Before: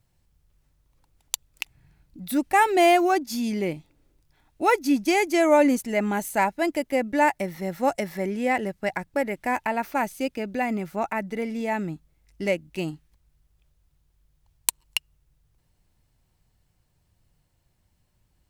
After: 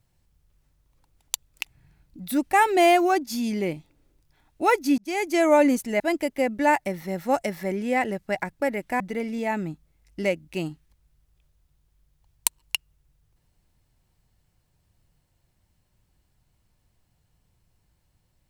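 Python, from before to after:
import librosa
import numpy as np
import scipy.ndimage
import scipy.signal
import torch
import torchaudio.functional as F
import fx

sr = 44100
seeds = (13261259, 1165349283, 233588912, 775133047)

y = fx.edit(x, sr, fx.fade_in_span(start_s=4.98, length_s=0.52, curve='qsin'),
    fx.cut(start_s=6.0, length_s=0.54),
    fx.cut(start_s=9.54, length_s=1.68), tone=tone)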